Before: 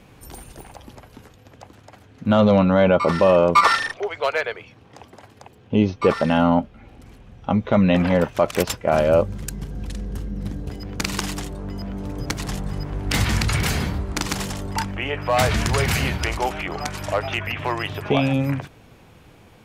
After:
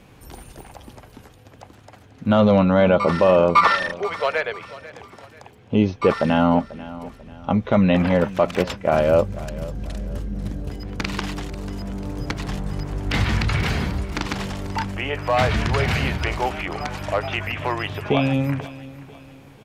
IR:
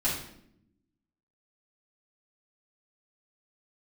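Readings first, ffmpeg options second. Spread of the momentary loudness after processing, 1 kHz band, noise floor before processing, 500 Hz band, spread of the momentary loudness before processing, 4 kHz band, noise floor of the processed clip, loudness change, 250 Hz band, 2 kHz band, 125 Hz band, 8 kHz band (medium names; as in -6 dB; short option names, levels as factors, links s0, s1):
16 LU, 0.0 dB, -50 dBFS, 0.0 dB, 15 LU, -2.0 dB, -48 dBFS, 0.0 dB, 0.0 dB, 0.0 dB, 0.0 dB, -9.5 dB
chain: -filter_complex "[0:a]aecho=1:1:491|982|1473:0.133|0.052|0.0203,acrossover=split=4600[s0][s1];[s1]acompressor=threshold=0.00501:ratio=4:attack=1:release=60[s2];[s0][s2]amix=inputs=2:normalize=0"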